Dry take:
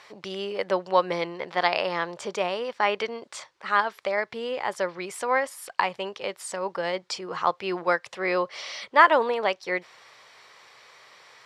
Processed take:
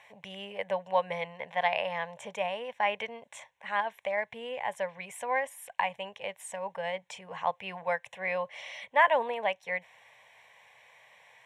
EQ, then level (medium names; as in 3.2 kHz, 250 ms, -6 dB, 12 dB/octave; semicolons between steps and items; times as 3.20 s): static phaser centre 1.3 kHz, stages 6; -3.0 dB